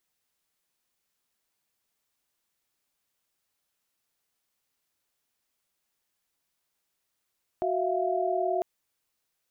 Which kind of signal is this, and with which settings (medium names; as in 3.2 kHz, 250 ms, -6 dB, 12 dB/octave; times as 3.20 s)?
chord F#4/E5/F5 sine, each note -29 dBFS 1.00 s